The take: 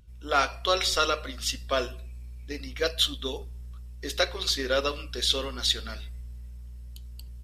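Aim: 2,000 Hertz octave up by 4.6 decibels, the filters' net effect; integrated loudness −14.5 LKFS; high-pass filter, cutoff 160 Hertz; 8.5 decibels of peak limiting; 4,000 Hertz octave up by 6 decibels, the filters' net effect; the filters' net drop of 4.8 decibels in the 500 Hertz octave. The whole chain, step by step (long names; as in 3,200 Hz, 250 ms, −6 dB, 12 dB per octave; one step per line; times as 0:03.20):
high-pass filter 160 Hz
parametric band 500 Hz −6 dB
parametric band 2,000 Hz +5.5 dB
parametric band 4,000 Hz +5.5 dB
level +11 dB
brickwall limiter −1 dBFS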